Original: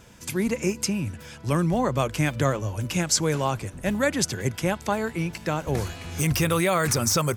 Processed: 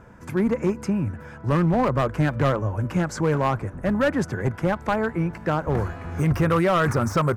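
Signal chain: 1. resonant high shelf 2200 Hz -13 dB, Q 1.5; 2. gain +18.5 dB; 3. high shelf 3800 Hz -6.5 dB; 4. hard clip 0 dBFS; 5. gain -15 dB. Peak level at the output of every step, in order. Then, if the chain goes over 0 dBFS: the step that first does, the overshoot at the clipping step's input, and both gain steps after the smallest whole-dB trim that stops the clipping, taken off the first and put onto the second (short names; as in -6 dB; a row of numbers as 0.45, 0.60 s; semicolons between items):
-8.5, +10.0, +9.5, 0.0, -15.0 dBFS; step 2, 9.5 dB; step 2 +8.5 dB, step 5 -5 dB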